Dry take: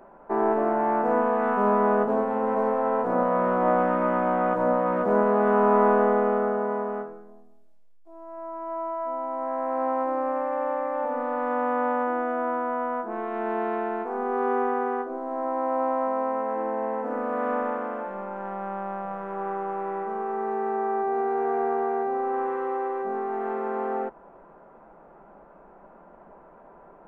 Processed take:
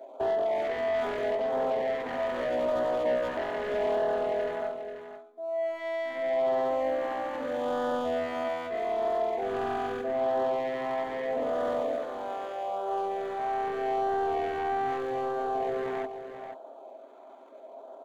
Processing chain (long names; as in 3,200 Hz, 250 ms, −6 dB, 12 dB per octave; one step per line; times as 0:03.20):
running median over 25 samples
elliptic high-pass filter 260 Hz, stop band 40 dB
parametric band 640 Hz +12.5 dB 0.34 octaves
notch filter 2,800 Hz, Q 5.9
comb filter 7.5 ms, depth 40%
downward compressor 5 to 1, threshold −19 dBFS, peak gain reduction 7.5 dB
soft clipping −23.5 dBFS, distortion −12 dB
auto-filter notch sine 0.53 Hz 490–2,300 Hz
tempo change 1.5×
single-tap delay 486 ms −9.5 dB